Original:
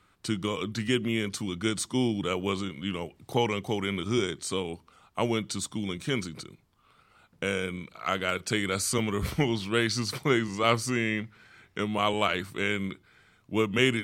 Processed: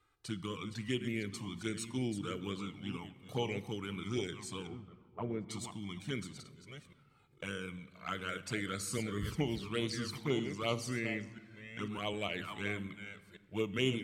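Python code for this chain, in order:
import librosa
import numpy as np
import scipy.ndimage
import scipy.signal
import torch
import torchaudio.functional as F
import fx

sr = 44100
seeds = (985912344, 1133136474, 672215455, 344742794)

y = fx.reverse_delay(x, sr, ms=495, wet_db=-9.0)
y = fx.lowpass(y, sr, hz=1200.0, slope=12, at=(4.67, 5.49))
y = fx.env_flanger(y, sr, rest_ms=2.5, full_db=-20.5)
y = fx.room_shoebox(y, sr, seeds[0], volume_m3=1800.0, walls='mixed', distance_m=0.37)
y = y * 10.0 ** (-8.0 / 20.0)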